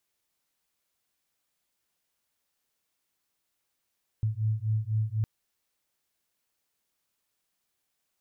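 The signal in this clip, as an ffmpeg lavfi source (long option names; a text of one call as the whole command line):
ffmpeg -f lavfi -i "aevalsrc='0.0376*(sin(2*PI*107*t)+sin(2*PI*111*t))':duration=1.01:sample_rate=44100" out.wav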